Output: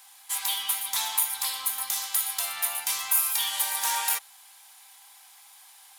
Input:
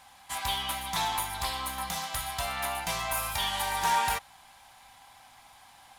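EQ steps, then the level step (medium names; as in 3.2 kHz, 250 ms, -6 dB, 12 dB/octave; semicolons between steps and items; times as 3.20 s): RIAA curve recording; bass shelf 450 Hz -10 dB; band-stop 660 Hz, Q 12; -3.5 dB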